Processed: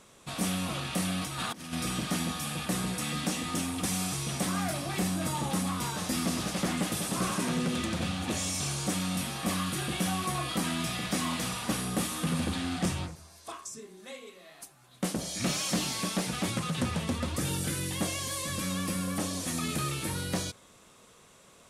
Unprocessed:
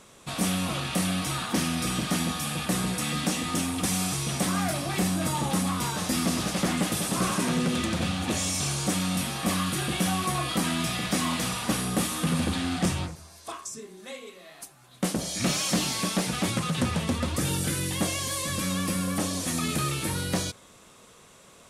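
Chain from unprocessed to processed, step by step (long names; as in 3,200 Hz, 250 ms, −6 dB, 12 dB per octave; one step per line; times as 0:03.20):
0:01.21–0:01.73: compressor whose output falls as the input rises −32 dBFS, ratio −0.5
level −4 dB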